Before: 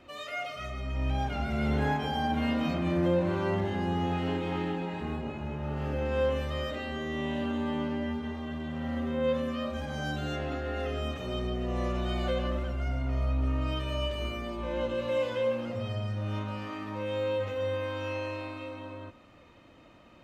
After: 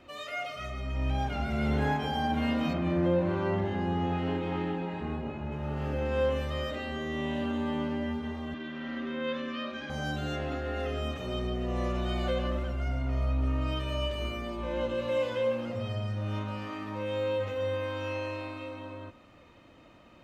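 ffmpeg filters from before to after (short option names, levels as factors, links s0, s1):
-filter_complex "[0:a]asettb=1/sr,asplit=3[s0][s1][s2];[s0]atrim=end=2.734[s3];[s1]atrim=start=2.73:end=5.52,asetpts=PTS-STARTPTS,afade=t=in:d=0.004:c=qsin,afade=t=out:st=2.786:d=0.004:c=qsin,aemphasis=mode=reproduction:type=50kf[s4];[s2]atrim=start=5.516[s5];[s3][s4]acrossfade=d=0.004:c1=hsin:c2=qsin[s6];[s6][s5]acrossfade=d=0.004:c1=qsin:c2=hsin,asettb=1/sr,asplit=3[s7][s8][s9];[s7]atrim=end=8.544[s10];[s8]atrim=start=8.54:end=9.9,asetpts=PTS-STARTPTS,afade=t=in:d=0.004:c=qsin,afade=t=out:st=1.356:d=0.004:c=qsin,highpass=260,equalizer=f=330:t=q:w=4:g=7,equalizer=f=490:t=q:w=4:g=-8,equalizer=f=780:t=q:w=4:g=-9,equalizer=f=1600:t=q:w=4:g=5,equalizer=f=2400:t=q:w=4:g=4,equalizer=f=3500:t=q:w=4:g=4,lowpass=f=5800:w=0.5412,lowpass=f=5800:w=1.3066[s11];[s9]atrim=start=9.896[s12];[s10][s11]acrossfade=d=0.004:c1=hsin:c2=qsin[s13];[s13][s12]acrossfade=d=0.004:c1=qsin:c2=hsin"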